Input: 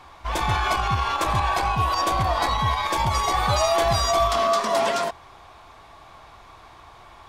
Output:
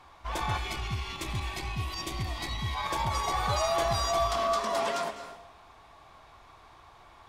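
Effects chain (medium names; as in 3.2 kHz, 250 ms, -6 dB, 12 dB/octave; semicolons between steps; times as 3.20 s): time-frequency box 0.57–2.75 s, 420–1800 Hz -12 dB; reverberation RT60 0.70 s, pre-delay 195 ms, DRR 10 dB; trim -7.5 dB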